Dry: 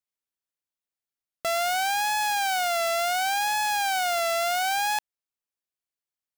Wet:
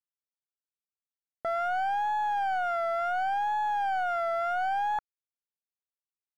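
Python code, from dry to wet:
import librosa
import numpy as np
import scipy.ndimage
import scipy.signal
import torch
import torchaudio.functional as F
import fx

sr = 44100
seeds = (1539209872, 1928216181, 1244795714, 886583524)

y = fx.peak_eq(x, sr, hz=1400.0, db=6.5, octaves=0.23)
y = fx.leveller(y, sr, passes=5)
y = scipy.signal.savgol_filter(y, 41, 4, mode='constant')
y = y * 10.0 ** (-7.5 / 20.0)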